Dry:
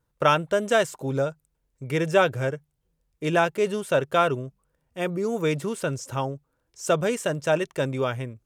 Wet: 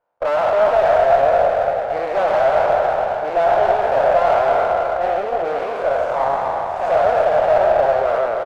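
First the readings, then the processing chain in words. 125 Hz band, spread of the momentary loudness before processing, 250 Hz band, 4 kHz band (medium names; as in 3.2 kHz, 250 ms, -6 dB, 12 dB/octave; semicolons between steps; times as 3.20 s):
-8.5 dB, 11 LU, -7.0 dB, -2.0 dB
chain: spectral sustain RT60 2.94 s; in parallel at -6 dB: sine folder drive 16 dB, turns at -1.5 dBFS; on the sum: ladder band-pass 750 Hz, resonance 65%; on a send: delay 231 ms -11 dB; on the sum: ever faster or slower copies 299 ms, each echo +1 st, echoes 3, each echo -6 dB; sliding maximum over 5 samples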